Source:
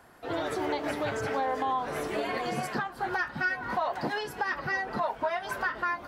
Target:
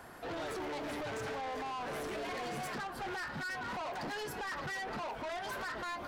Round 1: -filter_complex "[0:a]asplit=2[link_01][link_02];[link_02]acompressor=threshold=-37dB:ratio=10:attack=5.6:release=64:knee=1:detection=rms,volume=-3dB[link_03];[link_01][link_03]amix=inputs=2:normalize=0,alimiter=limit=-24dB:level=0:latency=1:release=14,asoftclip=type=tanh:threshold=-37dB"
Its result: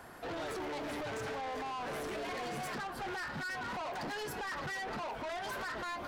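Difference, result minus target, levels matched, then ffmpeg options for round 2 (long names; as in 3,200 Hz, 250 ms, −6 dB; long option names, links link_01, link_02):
downward compressor: peak gain reduction −7 dB
-filter_complex "[0:a]asplit=2[link_01][link_02];[link_02]acompressor=threshold=-45dB:ratio=10:attack=5.6:release=64:knee=1:detection=rms,volume=-3dB[link_03];[link_01][link_03]amix=inputs=2:normalize=0,alimiter=limit=-24dB:level=0:latency=1:release=14,asoftclip=type=tanh:threshold=-37dB"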